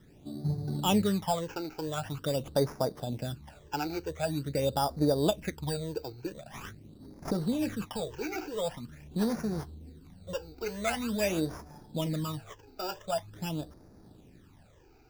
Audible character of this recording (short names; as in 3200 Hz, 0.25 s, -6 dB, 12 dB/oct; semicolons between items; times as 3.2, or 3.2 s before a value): aliases and images of a low sample rate 4200 Hz, jitter 0%; phasing stages 12, 0.45 Hz, lowest notch 180–3000 Hz